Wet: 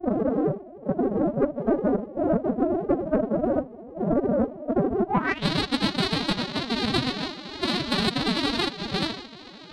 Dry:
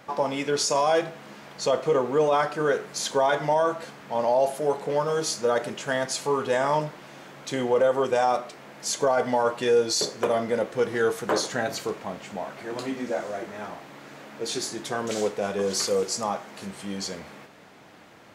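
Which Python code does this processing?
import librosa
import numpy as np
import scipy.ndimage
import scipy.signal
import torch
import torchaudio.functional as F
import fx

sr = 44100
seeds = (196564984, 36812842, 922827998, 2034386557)

y = np.r_[np.sort(x[:len(x) // 256 * 256].reshape(-1, 256), axis=1).ravel(), x[len(x) // 256 * 256:]]
y = fx.granulator(y, sr, seeds[0], grain_ms=64.0, per_s=26.0, spray_ms=36.0, spread_st=7)
y = fx.rider(y, sr, range_db=5, speed_s=0.5)
y = fx.filter_sweep_lowpass(y, sr, from_hz=560.0, to_hz=4100.0, start_s=9.52, end_s=10.28, q=5.2)
y = fx.stretch_grains(y, sr, factor=0.53, grain_ms=32.0)
y = 10.0 ** (-12.5 / 20.0) * np.tanh(y / 10.0 ** (-12.5 / 20.0))
y = fx.pitch_keep_formants(y, sr, semitones=8.5)
y = fx.dynamic_eq(y, sr, hz=540.0, q=1.3, threshold_db=-34.0, ratio=4.0, max_db=-4)
y = y * 10.0 ** (4.5 / 20.0)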